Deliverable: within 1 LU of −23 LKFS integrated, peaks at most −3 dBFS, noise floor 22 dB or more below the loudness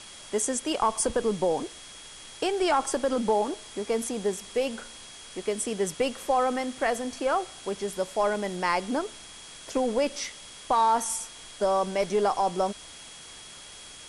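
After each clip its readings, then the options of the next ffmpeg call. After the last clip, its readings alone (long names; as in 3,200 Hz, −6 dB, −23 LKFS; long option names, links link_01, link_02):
interfering tone 3,300 Hz; level of the tone −49 dBFS; background noise floor −46 dBFS; target noise floor −50 dBFS; integrated loudness −28.0 LKFS; sample peak −13.0 dBFS; target loudness −23.0 LKFS
→ -af "bandreject=frequency=3300:width=30"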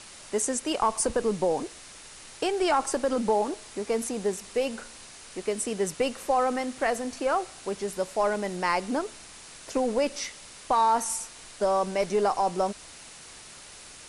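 interfering tone none found; background noise floor −47 dBFS; target noise floor −50 dBFS
→ -af "afftdn=noise_reduction=6:noise_floor=-47"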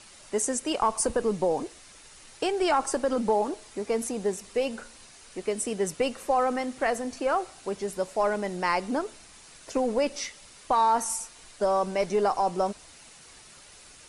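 background noise floor −51 dBFS; integrated loudness −28.0 LKFS; sample peak −13.0 dBFS; target loudness −23.0 LKFS
→ -af "volume=5dB"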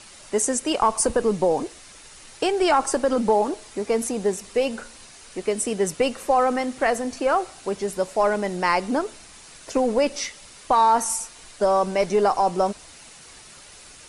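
integrated loudness −23.0 LKFS; sample peak −8.0 dBFS; background noise floor −46 dBFS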